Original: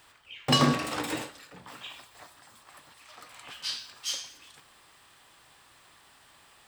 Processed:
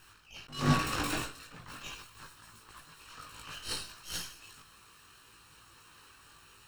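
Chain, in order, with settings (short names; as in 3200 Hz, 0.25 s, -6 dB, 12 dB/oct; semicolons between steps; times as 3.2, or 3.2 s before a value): minimum comb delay 0.72 ms; chorus voices 6, 0.69 Hz, delay 19 ms, depth 1.5 ms; attack slew limiter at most 140 dB/s; gain +4.5 dB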